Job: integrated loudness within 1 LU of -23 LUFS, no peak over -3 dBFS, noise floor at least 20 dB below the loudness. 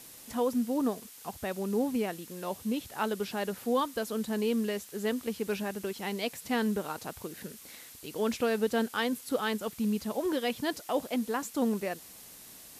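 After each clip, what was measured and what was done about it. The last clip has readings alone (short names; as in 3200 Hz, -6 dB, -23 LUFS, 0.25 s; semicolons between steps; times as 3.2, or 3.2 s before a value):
noise floor -51 dBFS; noise floor target -53 dBFS; loudness -32.5 LUFS; peak -16.0 dBFS; loudness target -23.0 LUFS
-> denoiser 6 dB, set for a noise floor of -51 dBFS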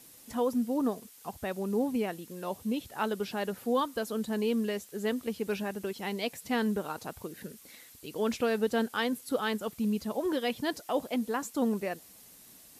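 noise floor -55 dBFS; loudness -32.5 LUFS; peak -16.5 dBFS; loudness target -23.0 LUFS
-> gain +9.5 dB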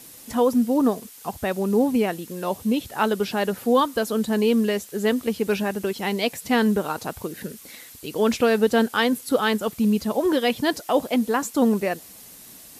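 loudness -23.0 LUFS; peak -7.0 dBFS; noise floor -45 dBFS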